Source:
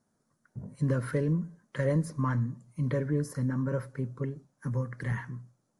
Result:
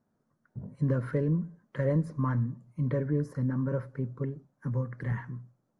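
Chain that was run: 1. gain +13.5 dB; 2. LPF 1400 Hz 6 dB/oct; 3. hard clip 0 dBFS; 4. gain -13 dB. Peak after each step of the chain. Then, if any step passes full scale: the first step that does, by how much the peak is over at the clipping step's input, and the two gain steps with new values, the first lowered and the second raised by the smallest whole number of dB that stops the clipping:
-3.5, -4.0, -4.0, -17.0 dBFS; no overload

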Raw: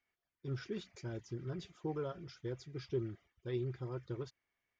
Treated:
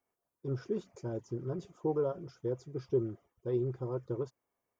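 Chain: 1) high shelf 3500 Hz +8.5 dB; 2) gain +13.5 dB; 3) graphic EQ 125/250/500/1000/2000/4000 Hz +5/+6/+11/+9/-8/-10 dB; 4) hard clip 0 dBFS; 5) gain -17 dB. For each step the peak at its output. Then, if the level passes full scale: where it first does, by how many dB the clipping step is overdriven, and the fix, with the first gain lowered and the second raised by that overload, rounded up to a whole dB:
-26.0, -12.5, -2.5, -2.5, -19.5 dBFS; no overload

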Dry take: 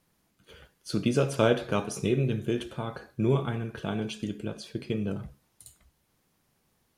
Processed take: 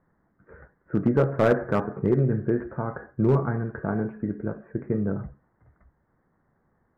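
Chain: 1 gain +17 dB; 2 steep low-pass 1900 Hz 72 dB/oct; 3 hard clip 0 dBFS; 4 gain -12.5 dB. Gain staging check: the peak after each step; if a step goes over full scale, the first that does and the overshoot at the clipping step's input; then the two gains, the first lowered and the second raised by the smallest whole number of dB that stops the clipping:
+8.0, +8.5, 0.0, -12.5 dBFS; step 1, 8.5 dB; step 1 +8 dB, step 4 -3.5 dB

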